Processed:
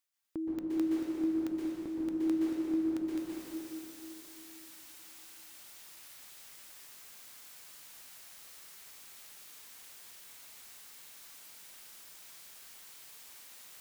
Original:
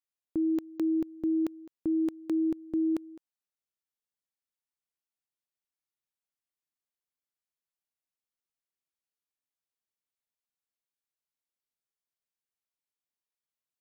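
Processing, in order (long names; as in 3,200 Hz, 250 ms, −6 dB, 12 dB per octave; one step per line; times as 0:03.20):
reversed playback
upward compression, threshold −37 dBFS
reversed playback
tilt shelving filter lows −4 dB, about 860 Hz
downward compressor 1.5 to 1, threshold −41 dBFS, peak gain reduction 4.5 dB
dense smooth reverb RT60 3.3 s, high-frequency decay 0.75×, pre-delay 110 ms, DRR −7 dB
level −1.5 dB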